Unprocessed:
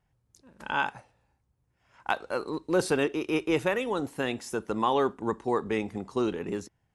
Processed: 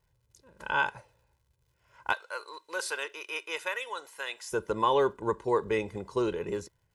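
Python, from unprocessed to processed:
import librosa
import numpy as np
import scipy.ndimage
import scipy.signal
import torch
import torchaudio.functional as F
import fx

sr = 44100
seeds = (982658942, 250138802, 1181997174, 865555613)

y = fx.highpass(x, sr, hz=1100.0, slope=12, at=(2.13, 4.52))
y = fx.dmg_crackle(y, sr, seeds[0], per_s=170.0, level_db=-62.0)
y = y + 0.62 * np.pad(y, (int(2.0 * sr / 1000.0), 0))[:len(y)]
y = y * librosa.db_to_amplitude(-1.5)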